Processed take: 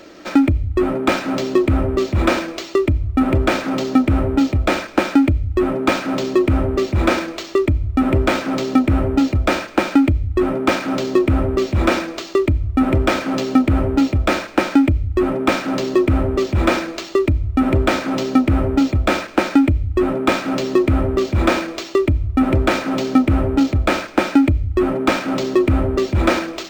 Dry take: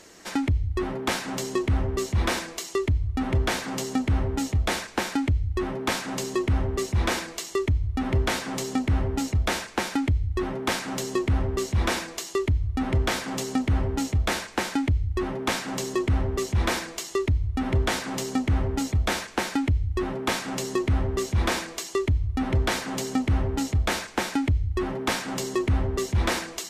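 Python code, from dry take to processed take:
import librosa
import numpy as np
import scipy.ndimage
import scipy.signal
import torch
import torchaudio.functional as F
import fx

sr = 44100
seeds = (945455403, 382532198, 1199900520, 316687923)

y = fx.small_body(x, sr, hz=(310.0, 570.0, 1300.0, 2400.0), ring_ms=30, db=11)
y = np.interp(np.arange(len(y)), np.arange(len(y))[::4], y[::4])
y = y * librosa.db_to_amplitude(5.0)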